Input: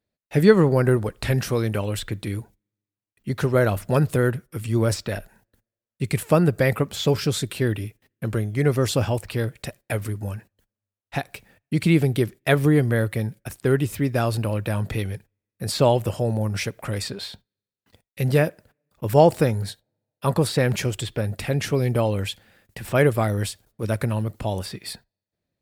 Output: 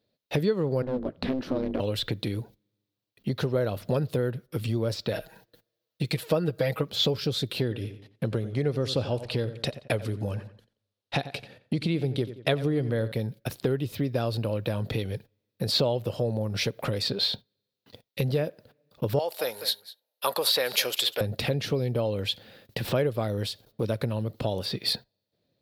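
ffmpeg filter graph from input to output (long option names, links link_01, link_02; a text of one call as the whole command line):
ffmpeg -i in.wav -filter_complex "[0:a]asettb=1/sr,asplit=3[link_01][link_02][link_03];[link_01]atrim=end=0.824[link_04];[link_02]atrim=start=0.82:end=1.8,asetpts=PTS-STARTPTS,afade=type=in:duration=0.004:curve=qsin,afade=type=out:start_time=0.976:duration=0.004:curve=qsin,lowpass=frequency=1100:poles=1,aeval=exprs='clip(val(0),-1,0.0944)':channel_layout=same,aeval=exprs='val(0)*sin(2*PI*130*n/s)':channel_layout=same[link_05];[link_03]atrim=start=1.796[link_06];[link_04][link_05]acrossfade=duration=0.004:curve1=hsin:curve2=qsin[link_07];[link_07][link_06]acrossfade=duration=0.004:curve1=qsin:curve2=hsin,asettb=1/sr,asplit=3[link_08][link_09][link_10];[link_08]atrim=end=5.134[link_11];[link_09]atrim=start=5.13:end=6.9,asetpts=PTS-STARTPTS,afade=type=in:duration=0.004:curve=qsin,afade=type=out:start_time=1.766:duration=0.004:curve=qsin,lowshelf=frequency=390:gain=-6,aecho=1:1:6.3:0.98,atrim=end_sample=78057[link_12];[link_10]atrim=start=6.896[link_13];[link_11][link_12]acrossfade=duration=0.004:curve1=hsin:curve2=qsin[link_14];[link_14][link_13]acrossfade=duration=0.004:curve1=qsin:curve2=hsin,asettb=1/sr,asplit=3[link_15][link_16][link_17];[link_15]atrim=end=7.614[link_18];[link_16]atrim=start=7.61:end=13.12,asetpts=PTS-STARTPTS,afade=type=in:duration=0.004:curve=qsin,afade=type=out:start_time=5.506:duration=0.004:curve=qsin,lowpass=frequency=11000:width=0.5412,lowpass=frequency=11000:width=1.3066,asplit=2[link_19][link_20];[link_20]adelay=89,lowpass=frequency=4300:poles=1,volume=-14.5dB,asplit=2[link_21][link_22];[link_22]adelay=89,lowpass=frequency=4300:poles=1,volume=0.29,asplit=2[link_23][link_24];[link_24]adelay=89,lowpass=frequency=4300:poles=1,volume=0.29[link_25];[link_19][link_21][link_23][link_25]amix=inputs=4:normalize=0,atrim=end_sample=242991[link_26];[link_17]atrim=start=13.116[link_27];[link_18][link_26]acrossfade=duration=0.004:curve1=hsin:curve2=qsin[link_28];[link_28][link_27]acrossfade=duration=0.004:curve1=qsin:curve2=hsin,asettb=1/sr,asplit=3[link_29][link_30][link_31];[link_29]atrim=end=19.194[link_32];[link_30]atrim=start=19.19:end=21.21,asetpts=PTS-STARTPTS,afade=type=in:duration=0.004:curve=qsin,afade=type=out:start_time=2.016:duration=0.004:curve=qsin,highpass=860,equalizer=frequency=12000:width=1.6:gain=13.5,aecho=1:1:199:0.119,atrim=end_sample=89082[link_33];[link_31]atrim=start=21.206[link_34];[link_32][link_33]acrossfade=duration=0.004:curve1=hsin:curve2=qsin[link_35];[link_35][link_34]acrossfade=duration=0.004:curve1=qsin:curve2=hsin,equalizer=frequency=125:width_type=o:width=1:gain=10,equalizer=frequency=250:width_type=o:width=1:gain=7,equalizer=frequency=500:width_type=o:width=1:gain=11,equalizer=frequency=2000:width_type=o:width=1:gain=-4,equalizer=frequency=4000:width_type=o:width=1:gain=10,equalizer=frequency=8000:width_type=o:width=1:gain=-11,acompressor=threshold=-23dB:ratio=4,tiltshelf=frequency=760:gain=-5" out.wav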